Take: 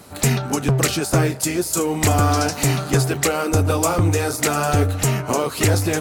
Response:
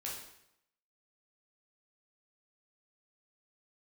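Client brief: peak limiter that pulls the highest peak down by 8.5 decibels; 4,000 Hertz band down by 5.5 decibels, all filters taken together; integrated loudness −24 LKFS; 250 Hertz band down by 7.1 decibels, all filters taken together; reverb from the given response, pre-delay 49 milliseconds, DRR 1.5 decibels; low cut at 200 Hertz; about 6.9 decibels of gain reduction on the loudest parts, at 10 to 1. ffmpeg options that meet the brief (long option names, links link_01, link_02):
-filter_complex "[0:a]highpass=200,equalizer=frequency=250:width_type=o:gain=-8,equalizer=frequency=4000:width_type=o:gain=-7.5,acompressor=threshold=-24dB:ratio=10,alimiter=limit=-21dB:level=0:latency=1,asplit=2[link_01][link_02];[1:a]atrim=start_sample=2205,adelay=49[link_03];[link_02][link_03]afir=irnorm=-1:irlink=0,volume=-1.5dB[link_04];[link_01][link_04]amix=inputs=2:normalize=0,volume=5dB"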